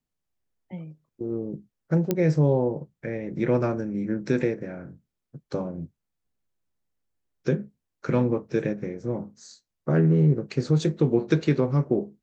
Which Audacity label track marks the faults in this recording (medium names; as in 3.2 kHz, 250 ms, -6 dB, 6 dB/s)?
2.110000	2.110000	pop -10 dBFS